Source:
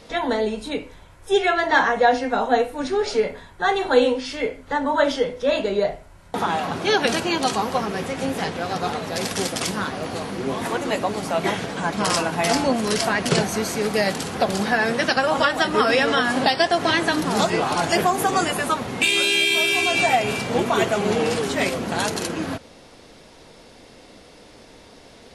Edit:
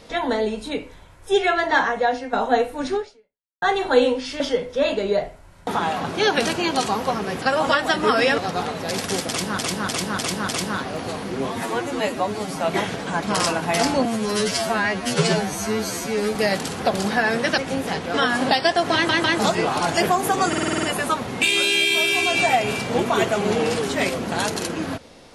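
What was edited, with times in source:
1.6–2.33 fade out, to -7.5 dB
2.96–3.62 fade out exponential
4.4–5.07 cut
8.09–8.65 swap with 15.13–16.09
9.55–9.85 loop, 5 plays
10.57–11.31 stretch 1.5×
12.75–13.9 stretch 2×
16.89 stutter in place 0.15 s, 3 plays
18.43 stutter 0.05 s, 8 plays

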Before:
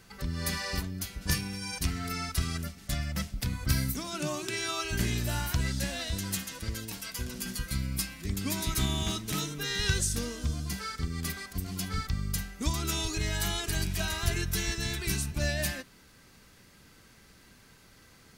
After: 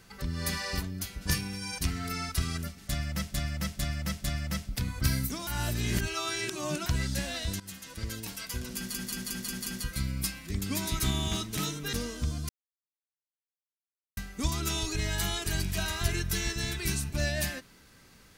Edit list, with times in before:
2.89–3.34 loop, 4 plays
4.12–5.51 reverse
6.25–6.77 fade in, from -17.5 dB
7.41 stutter 0.18 s, 6 plays
9.68–10.15 cut
10.71–12.39 mute

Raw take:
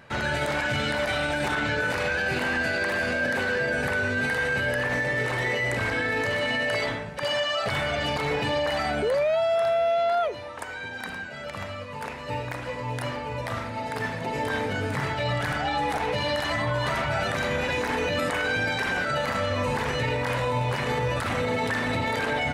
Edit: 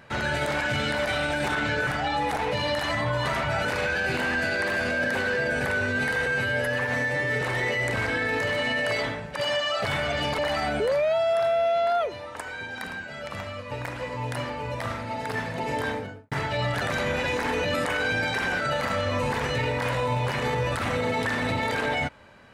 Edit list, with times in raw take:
4.48–5.25 stretch 1.5×
8.22–8.61 cut
11.94–12.38 cut
14.46–14.98 studio fade out
15.48–17.26 move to 1.87

